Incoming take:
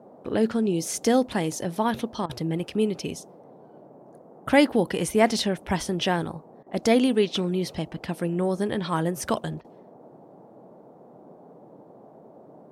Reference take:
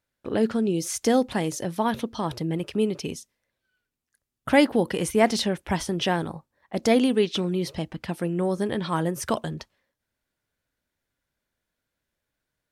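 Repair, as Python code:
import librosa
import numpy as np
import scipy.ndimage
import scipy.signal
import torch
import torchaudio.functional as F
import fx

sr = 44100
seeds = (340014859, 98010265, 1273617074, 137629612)

y = fx.fix_interpolate(x, sr, at_s=(2.26, 6.63, 9.61), length_ms=33.0)
y = fx.noise_reduce(y, sr, print_start_s=10.68, print_end_s=11.18, reduce_db=30.0)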